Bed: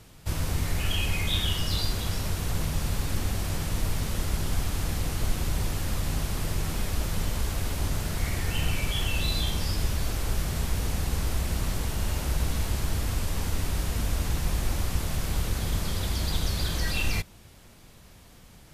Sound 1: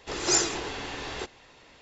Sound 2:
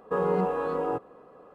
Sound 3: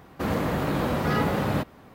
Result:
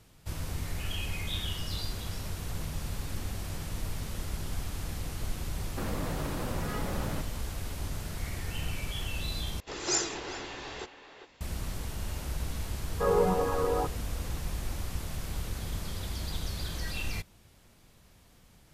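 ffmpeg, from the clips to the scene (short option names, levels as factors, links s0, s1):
-filter_complex "[0:a]volume=0.422[s0];[3:a]acompressor=threshold=0.0355:ratio=6:attack=3.2:release=140:knee=1:detection=peak[s1];[1:a]asplit=2[s2][s3];[s3]adelay=400,highpass=300,lowpass=3400,asoftclip=type=hard:threshold=0.126,volume=0.355[s4];[s2][s4]amix=inputs=2:normalize=0[s5];[2:a]aphaser=in_gain=1:out_gain=1:delay=2.6:decay=0.41:speed=1.9:type=triangular[s6];[s0]asplit=2[s7][s8];[s7]atrim=end=9.604[s9];[s5]atrim=end=1.81,asetpts=PTS-STARTPTS,volume=0.531[s10];[s8]atrim=start=11.406[s11];[s1]atrim=end=1.94,asetpts=PTS-STARTPTS,volume=0.668,afade=t=in:d=0.004:c=hsin,afade=t=out:st=1.936:d=0.004:c=hsin,adelay=5580[s12];[s6]atrim=end=1.54,asetpts=PTS-STARTPTS,volume=0.841,afade=t=in:d=0.004:c=hsin,afade=t=out:st=1.536:d=0.004:c=hsin,adelay=12890[s13];[s9][s10]acrossfade=d=0.004:c1=hsin:c2=hsin[s14];[s14][s11]acrossfade=d=0.004:c1=hsin:c2=hsin[s15];[s15][s12][s13]amix=inputs=3:normalize=0"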